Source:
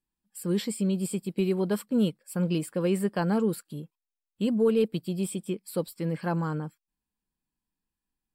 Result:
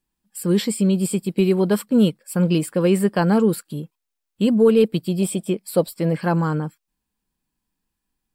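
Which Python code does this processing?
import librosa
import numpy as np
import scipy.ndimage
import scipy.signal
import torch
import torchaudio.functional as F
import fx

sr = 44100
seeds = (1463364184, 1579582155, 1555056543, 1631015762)

y = fx.peak_eq(x, sr, hz=650.0, db=11.5, octaves=0.38, at=(5.22, 6.13))
y = y * librosa.db_to_amplitude(8.5)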